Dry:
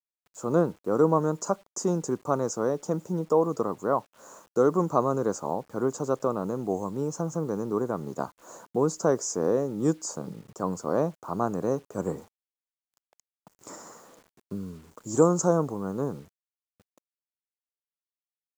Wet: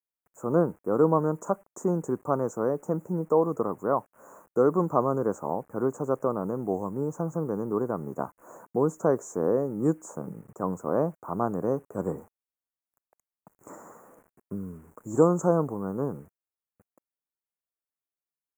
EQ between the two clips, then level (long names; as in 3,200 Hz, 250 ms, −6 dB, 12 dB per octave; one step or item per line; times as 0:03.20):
Butterworth band-reject 4,100 Hz, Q 0.54
0.0 dB